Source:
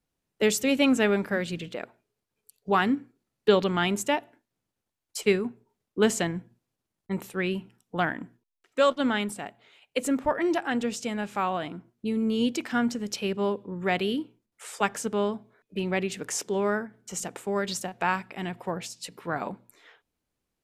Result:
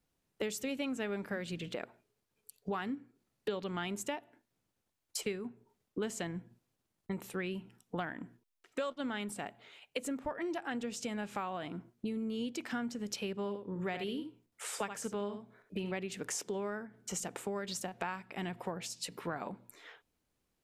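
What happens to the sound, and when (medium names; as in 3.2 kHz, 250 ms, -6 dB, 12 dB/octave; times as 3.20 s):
13.38–15.92 s: delay 74 ms -9 dB
whole clip: compression 5:1, threshold -37 dBFS; trim +1 dB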